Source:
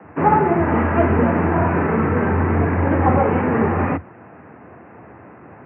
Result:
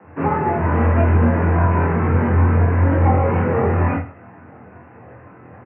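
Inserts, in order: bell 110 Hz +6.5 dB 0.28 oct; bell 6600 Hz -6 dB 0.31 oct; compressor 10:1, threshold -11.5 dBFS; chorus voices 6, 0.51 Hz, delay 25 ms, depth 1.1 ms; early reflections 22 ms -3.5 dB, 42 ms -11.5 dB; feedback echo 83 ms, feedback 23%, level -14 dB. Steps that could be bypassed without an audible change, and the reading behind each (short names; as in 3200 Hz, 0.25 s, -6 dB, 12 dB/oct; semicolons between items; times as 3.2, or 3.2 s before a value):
bell 6600 Hz: input band ends at 1600 Hz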